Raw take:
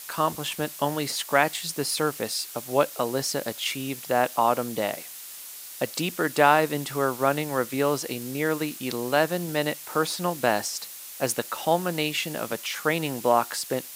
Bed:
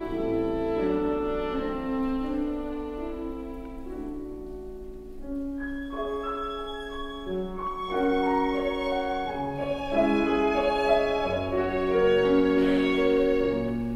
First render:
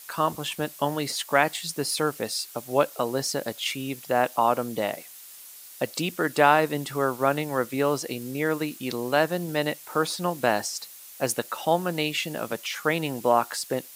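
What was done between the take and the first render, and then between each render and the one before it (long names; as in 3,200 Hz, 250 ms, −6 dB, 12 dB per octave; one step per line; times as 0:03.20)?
broadband denoise 6 dB, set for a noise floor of −41 dBFS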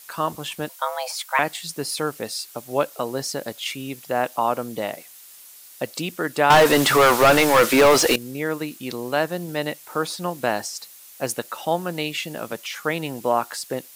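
0:00.69–0:01.39: frequency shifter +370 Hz
0:06.50–0:08.16: mid-hump overdrive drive 31 dB, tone 4,300 Hz, clips at −5.5 dBFS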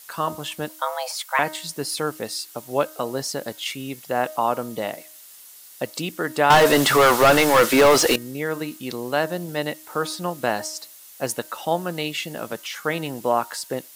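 notch filter 2,400 Hz, Q 19
hum removal 311.4 Hz, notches 7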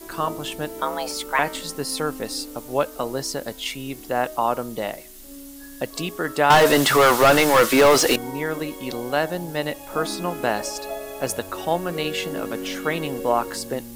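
mix in bed −9.5 dB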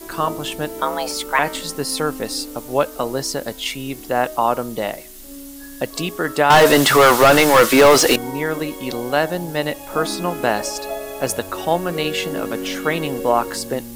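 level +4 dB
brickwall limiter −3 dBFS, peak gain reduction 2.5 dB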